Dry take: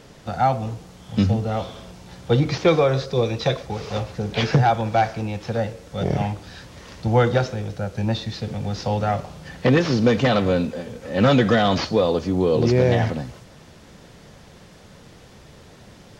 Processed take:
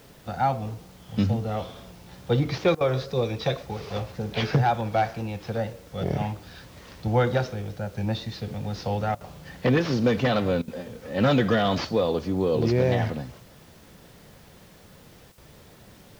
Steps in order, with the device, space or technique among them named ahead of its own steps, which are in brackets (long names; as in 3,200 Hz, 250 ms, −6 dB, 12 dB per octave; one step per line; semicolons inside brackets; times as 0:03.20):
worn cassette (low-pass filter 6,500 Hz; tape wow and flutter; tape dropouts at 0:02.75/0:09.15/0:10.62/0:15.32, 56 ms −18 dB; white noise bed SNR 33 dB)
level −4.5 dB